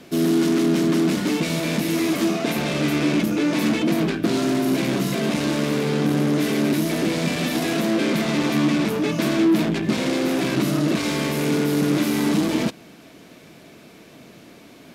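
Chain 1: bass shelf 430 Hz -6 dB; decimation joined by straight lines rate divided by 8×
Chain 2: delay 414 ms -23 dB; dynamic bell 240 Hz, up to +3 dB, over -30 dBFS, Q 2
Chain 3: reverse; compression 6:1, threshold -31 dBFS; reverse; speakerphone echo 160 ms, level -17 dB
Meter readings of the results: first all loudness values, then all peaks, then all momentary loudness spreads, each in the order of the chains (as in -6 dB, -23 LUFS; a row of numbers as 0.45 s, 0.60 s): -25.5 LUFS, -20.0 LUFS, -33.0 LUFS; -12.5 dBFS, -8.0 dBFS, -21.0 dBFS; 3 LU, 4 LU, 13 LU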